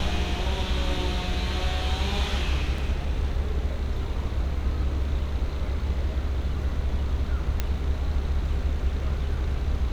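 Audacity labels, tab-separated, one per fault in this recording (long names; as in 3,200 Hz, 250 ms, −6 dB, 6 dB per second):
2.780000	2.780000	drop-out 3.2 ms
7.600000	7.600000	click −11 dBFS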